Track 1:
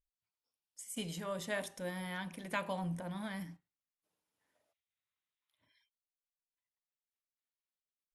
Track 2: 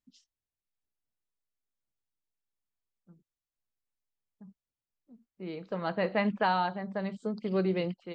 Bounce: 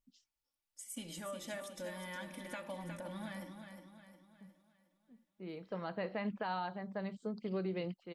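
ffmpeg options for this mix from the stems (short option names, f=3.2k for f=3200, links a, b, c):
-filter_complex "[0:a]aecho=1:1:3.5:0.68,acompressor=threshold=-38dB:ratio=6,volume=-2.5dB,asplit=2[a][b];[b]volume=-7.5dB[c];[1:a]volume=-6.5dB[d];[c]aecho=0:1:360|720|1080|1440|1800|2160:1|0.45|0.202|0.0911|0.041|0.0185[e];[a][d][e]amix=inputs=3:normalize=0,alimiter=level_in=5dB:limit=-24dB:level=0:latency=1:release=101,volume=-5dB"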